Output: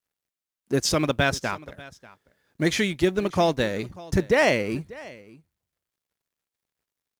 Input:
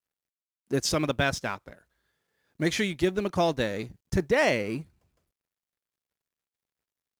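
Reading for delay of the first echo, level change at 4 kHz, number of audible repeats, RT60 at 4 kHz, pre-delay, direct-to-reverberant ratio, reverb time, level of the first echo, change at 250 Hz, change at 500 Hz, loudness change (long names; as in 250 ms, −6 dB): 591 ms, +3.5 dB, 1, no reverb audible, no reverb audible, no reverb audible, no reverb audible, −20.5 dB, +3.5 dB, +3.5 dB, +3.5 dB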